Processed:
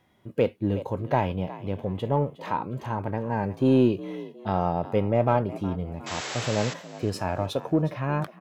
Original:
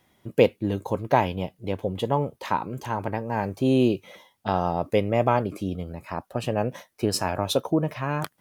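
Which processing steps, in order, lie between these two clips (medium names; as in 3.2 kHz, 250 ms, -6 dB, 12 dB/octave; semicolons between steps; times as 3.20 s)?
painted sound noise, 6.06–6.74 s, 300–7900 Hz -30 dBFS; frequency-shifting echo 362 ms, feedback 35%, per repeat +50 Hz, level -18 dB; harmonic-percussive split percussive -7 dB; treble shelf 4.3 kHz -10.5 dB; in parallel at -9.5 dB: saturation -23 dBFS, distortion -8 dB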